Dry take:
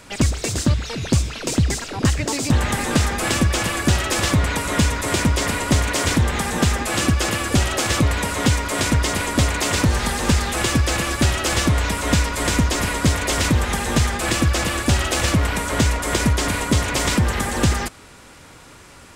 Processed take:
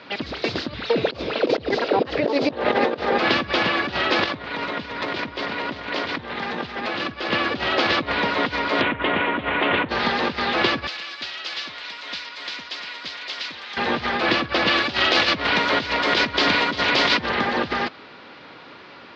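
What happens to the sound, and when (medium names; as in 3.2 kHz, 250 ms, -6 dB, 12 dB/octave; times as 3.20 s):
0.90–3.18 s: peaking EQ 500 Hz +14 dB 1.4 oct
4.25–7.31 s: level flattener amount 100%
8.81–9.89 s: steep low-pass 3.3 kHz 48 dB/octave
10.87–13.77 s: pre-emphasis filter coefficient 0.97
14.67–17.29 s: treble shelf 2.9 kHz +10.5 dB
whole clip: steep low-pass 4.6 kHz 48 dB/octave; compressor with a negative ratio -19 dBFS, ratio -0.5; high-pass 230 Hz 12 dB/octave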